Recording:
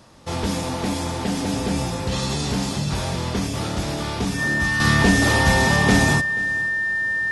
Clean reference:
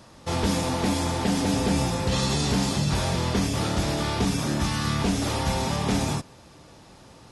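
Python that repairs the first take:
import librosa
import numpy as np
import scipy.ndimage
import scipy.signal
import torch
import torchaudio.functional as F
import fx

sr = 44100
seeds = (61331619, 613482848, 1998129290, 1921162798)

y = fx.notch(x, sr, hz=1800.0, q=30.0)
y = fx.fix_echo_inverse(y, sr, delay_ms=482, level_db=-20.0)
y = fx.gain(y, sr, db=fx.steps((0.0, 0.0), (4.8, -7.5)))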